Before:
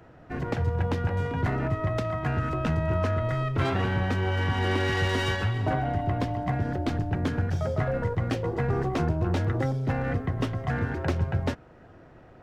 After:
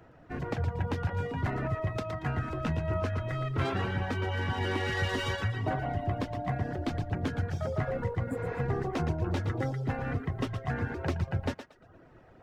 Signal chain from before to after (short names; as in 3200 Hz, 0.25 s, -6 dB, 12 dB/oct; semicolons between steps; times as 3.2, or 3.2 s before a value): on a send: thinning echo 0.116 s, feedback 33%, high-pass 330 Hz, level -6.5 dB; on the sum: spectral repair 8.29–8.57, 280–6900 Hz both; reverb removal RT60 0.57 s; gain -3.5 dB